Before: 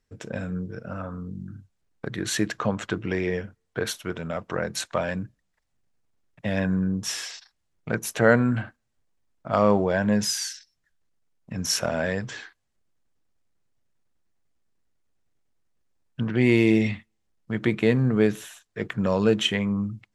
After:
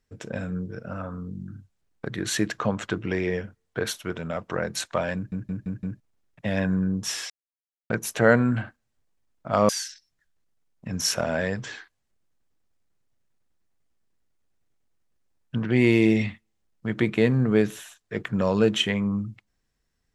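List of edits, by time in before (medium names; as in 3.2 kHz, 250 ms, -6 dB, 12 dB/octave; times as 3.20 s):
5.15 s: stutter in place 0.17 s, 5 plays
7.30–7.90 s: mute
9.69–10.34 s: delete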